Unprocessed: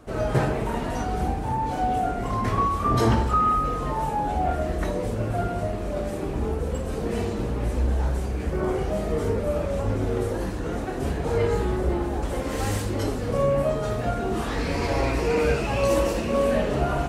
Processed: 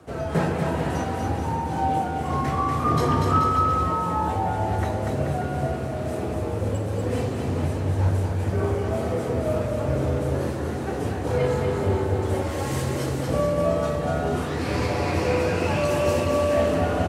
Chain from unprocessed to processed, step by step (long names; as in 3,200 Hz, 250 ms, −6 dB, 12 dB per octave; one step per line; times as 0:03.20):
amplitude tremolo 2.1 Hz, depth 35%
frequency shifter +31 Hz
bouncing-ball delay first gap 240 ms, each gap 0.8×, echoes 5